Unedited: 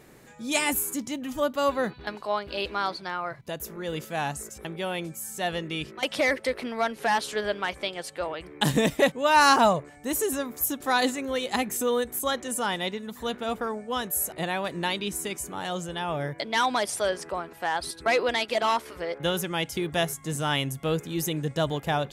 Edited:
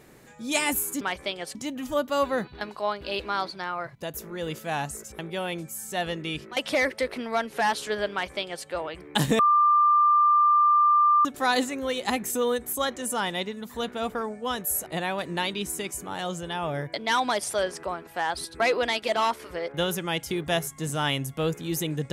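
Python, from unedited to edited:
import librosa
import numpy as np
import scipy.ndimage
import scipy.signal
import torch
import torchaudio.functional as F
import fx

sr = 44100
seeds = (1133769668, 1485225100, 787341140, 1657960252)

y = fx.edit(x, sr, fx.duplicate(start_s=7.58, length_s=0.54, to_s=1.01),
    fx.bleep(start_s=8.85, length_s=1.86, hz=1190.0, db=-16.0), tone=tone)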